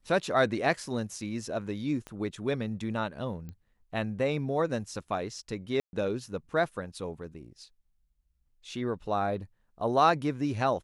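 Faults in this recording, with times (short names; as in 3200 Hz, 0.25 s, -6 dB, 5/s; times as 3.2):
2.07 pop -26 dBFS
3.49 pop -30 dBFS
5.8–5.93 gap 0.131 s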